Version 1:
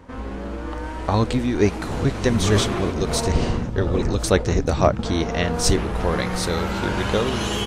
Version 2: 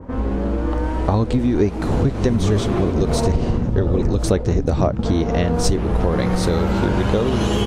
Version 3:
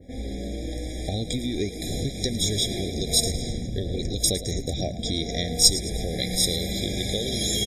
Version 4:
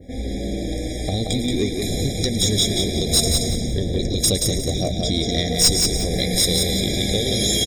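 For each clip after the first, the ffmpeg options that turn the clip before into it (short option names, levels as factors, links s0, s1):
-af "tiltshelf=f=1500:g=9.5,acompressor=threshold=0.178:ratio=6,adynamicequalizer=threshold=0.00631:dfrequency=2400:dqfactor=0.7:tfrequency=2400:tqfactor=0.7:attack=5:release=100:ratio=0.375:range=4:mode=boostabove:tftype=highshelf,volume=1.12"
-filter_complex "[0:a]asplit=5[s0][s1][s2][s3][s4];[s1]adelay=109,afreqshift=58,volume=0.178[s5];[s2]adelay=218,afreqshift=116,volume=0.0822[s6];[s3]adelay=327,afreqshift=174,volume=0.0376[s7];[s4]adelay=436,afreqshift=232,volume=0.0174[s8];[s0][s5][s6][s7][s8]amix=inputs=5:normalize=0,aexciter=amount=12.4:drive=3.9:freq=2500,afftfilt=real='re*eq(mod(floor(b*sr/1024/810),2),0)':imag='im*eq(mod(floor(b*sr/1024/810),2),0)':win_size=1024:overlap=0.75,volume=0.282"
-af "asoftclip=type=tanh:threshold=0.188,aecho=1:1:178|356|534|712:0.596|0.167|0.0467|0.0131,volume=1.88"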